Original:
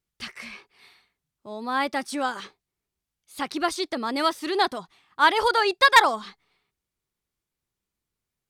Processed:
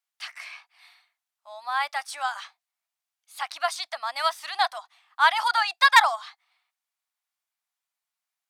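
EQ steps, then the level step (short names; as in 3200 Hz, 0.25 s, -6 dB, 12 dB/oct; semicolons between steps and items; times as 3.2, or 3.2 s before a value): elliptic high-pass 680 Hz, stop band 40 dB; 0.0 dB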